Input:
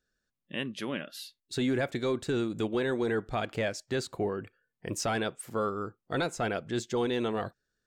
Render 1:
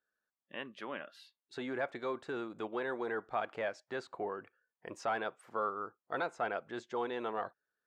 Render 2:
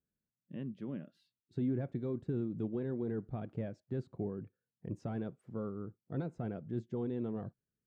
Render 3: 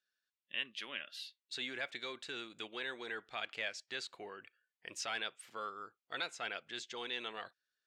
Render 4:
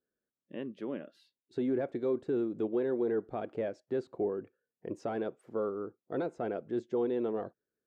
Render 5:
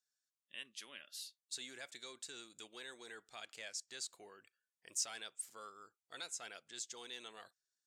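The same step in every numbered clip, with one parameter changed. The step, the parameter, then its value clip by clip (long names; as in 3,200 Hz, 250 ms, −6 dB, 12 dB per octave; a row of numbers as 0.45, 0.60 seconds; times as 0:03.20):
resonant band-pass, frequency: 1,000, 150, 2,900, 390, 7,500 Hertz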